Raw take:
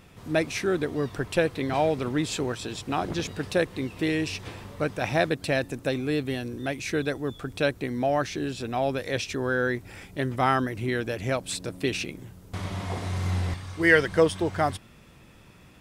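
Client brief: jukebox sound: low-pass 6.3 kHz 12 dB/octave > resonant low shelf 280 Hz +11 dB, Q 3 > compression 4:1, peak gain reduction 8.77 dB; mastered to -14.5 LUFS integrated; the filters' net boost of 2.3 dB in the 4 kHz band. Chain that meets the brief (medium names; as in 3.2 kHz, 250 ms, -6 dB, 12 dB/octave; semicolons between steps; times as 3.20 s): low-pass 6.3 kHz 12 dB/octave; resonant low shelf 280 Hz +11 dB, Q 3; peaking EQ 4 kHz +3.5 dB; compression 4:1, threshold -20 dBFS; trim +10.5 dB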